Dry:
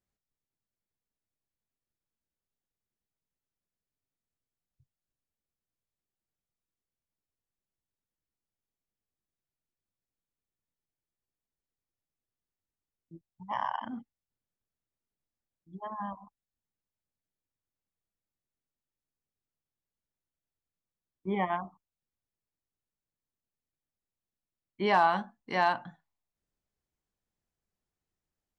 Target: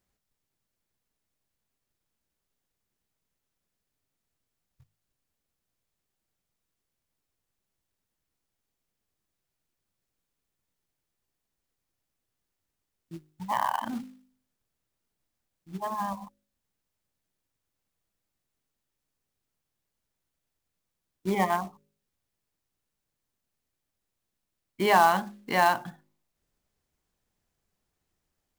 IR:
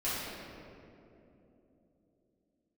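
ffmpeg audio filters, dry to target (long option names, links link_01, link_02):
-filter_complex "[0:a]bandreject=frequency=51.28:width_type=h:width=4,bandreject=frequency=102.56:width_type=h:width=4,bandreject=frequency=153.84:width_type=h:width=4,bandreject=frequency=205.12:width_type=h:width=4,bandreject=frequency=256.4:width_type=h:width=4,bandreject=frequency=307.68:width_type=h:width=4,bandreject=frequency=358.96:width_type=h:width=4,bandreject=frequency=410.24:width_type=h:width=4,bandreject=frequency=461.52:width_type=h:width=4,bandreject=frequency=512.8:width_type=h:width=4,bandreject=frequency=564.08:width_type=h:width=4,asplit=2[link_01][link_02];[link_02]acompressor=threshold=-42dB:ratio=4,volume=-0.5dB[link_03];[link_01][link_03]amix=inputs=2:normalize=0,acrusher=bits=4:mode=log:mix=0:aa=0.000001,volume=3dB"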